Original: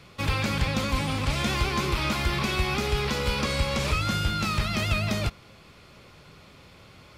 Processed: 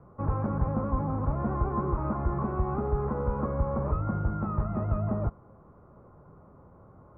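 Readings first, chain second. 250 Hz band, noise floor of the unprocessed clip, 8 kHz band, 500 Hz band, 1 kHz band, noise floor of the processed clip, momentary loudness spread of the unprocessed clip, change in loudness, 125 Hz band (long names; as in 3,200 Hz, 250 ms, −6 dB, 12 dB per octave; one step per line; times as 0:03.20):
−1.0 dB, −52 dBFS, below −40 dB, −1.0 dB, −3.0 dB, −55 dBFS, 2 LU, −3.5 dB, −1.0 dB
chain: Butterworth low-pass 1,200 Hz 36 dB per octave
level −1 dB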